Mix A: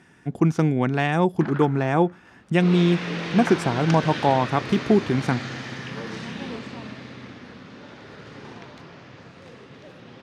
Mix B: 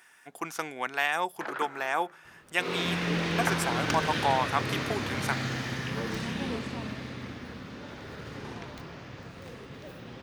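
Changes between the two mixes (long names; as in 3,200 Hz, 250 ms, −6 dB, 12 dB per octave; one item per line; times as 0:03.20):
speech: add high-pass filter 970 Hz 12 dB per octave
master: remove band-pass filter 110–6,900 Hz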